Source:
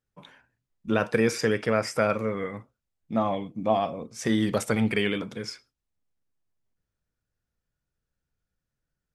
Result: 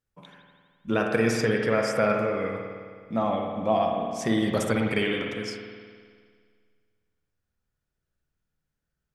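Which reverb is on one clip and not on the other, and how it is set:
spring reverb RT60 1.9 s, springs 52 ms, chirp 40 ms, DRR 1.5 dB
level −1 dB

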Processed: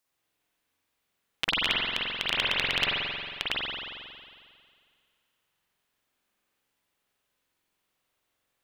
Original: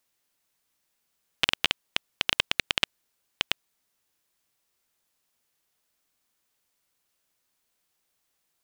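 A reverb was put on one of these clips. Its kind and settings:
spring reverb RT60 2.1 s, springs 45 ms, chirp 30 ms, DRR −7 dB
level −5.5 dB

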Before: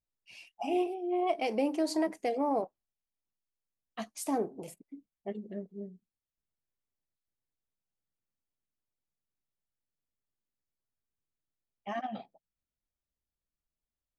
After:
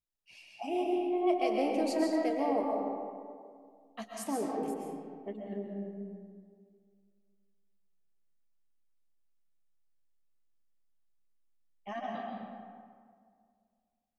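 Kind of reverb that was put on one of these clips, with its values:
comb and all-pass reverb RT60 2.1 s, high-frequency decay 0.5×, pre-delay 90 ms, DRR −1 dB
level −3.5 dB

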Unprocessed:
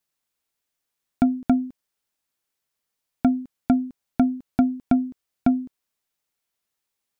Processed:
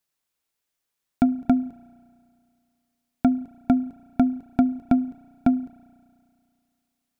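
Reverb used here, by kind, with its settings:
spring reverb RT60 2.3 s, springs 33 ms, chirp 55 ms, DRR 19 dB

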